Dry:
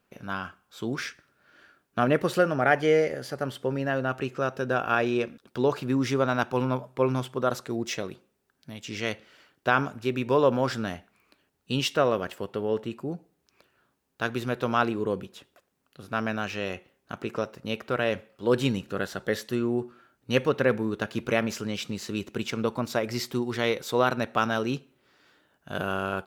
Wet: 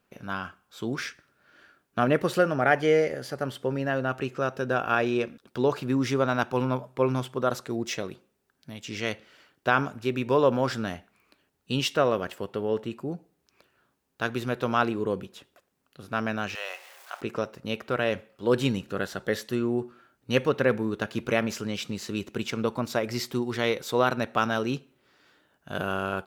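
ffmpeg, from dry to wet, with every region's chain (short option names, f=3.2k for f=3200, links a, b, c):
-filter_complex "[0:a]asettb=1/sr,asplit=3[a][b][c];[a]atrim=end=16.554[d];[b]atrim=start=16.55:end=17.21,asetpts=PTS-STARTPTS,afade=t=in:d=0.004:c=qsin,afade=t=out:st=0.656:d=0.004:c=qsin,aeval=exprs='val(0)+0.5*0.0075*sgn(val(0))':c=same,highpass=f=650:w=0.5412,highpass=f=650:w=1.3066[e];[c]atrim=start=17.206[f];[d][e]acrossfade=d=0.004:c1=hsin:c2=qsin[g];[g][f]acrossfade=d=0.004:c1=qsin:c2=hsin"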